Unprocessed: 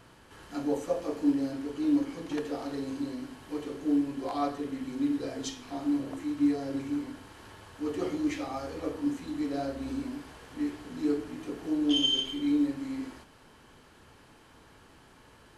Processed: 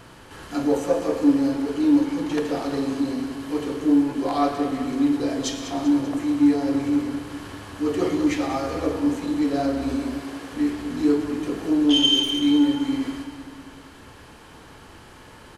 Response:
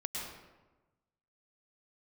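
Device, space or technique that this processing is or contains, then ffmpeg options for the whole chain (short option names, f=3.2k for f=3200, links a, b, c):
saturated reverb return: -filter_complex "[0:a]asettb=1/sr,asplit=3[a][b][c];[a]atrim=end=9.964[d];[b]atrim=start=9.96:end=10.52,asetpts=PTS-STARTPTS,afade=t=in:d=0.004:c=qsin,afade=t=out:st=0.556:d=0.004:c=qsin,highpass=f=230:p=1[e];[c]atrim=start=10.516[f];[d][e]acrossfade=d=0.004:c1=hsin:c2=qsin[g];[g][f]acrossfade=d=0.004:c1=qsin:c2=hsin,asplit=2[h][i];[1:a]atrim=start_sample=2205[j];[i][j]afir=irnorm=-1:irlink=0,asoftclip=type=tanh:threshold=-29dB,volume=-5dB[k];[h][k]amix=inputs=2:normalize=0,aecho=1:1:195|390|585|780|975|1170:0.251|0.138|0.076|0.0418|0.023|0.0126,volume=6.5dB"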